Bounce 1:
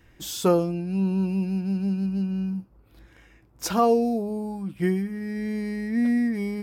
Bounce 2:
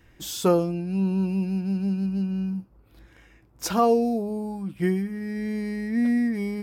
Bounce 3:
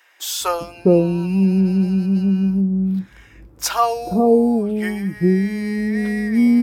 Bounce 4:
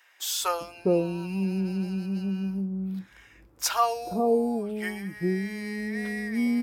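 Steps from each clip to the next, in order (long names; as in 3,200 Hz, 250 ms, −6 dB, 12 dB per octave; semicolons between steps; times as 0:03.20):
no processing that can be heard
multiband delay without the direct sound highs, lows 410 ms, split 650 Hz; level +8.5 dB
low-shelf EQ 410 Hz −9.5 dB; level −4.5 dB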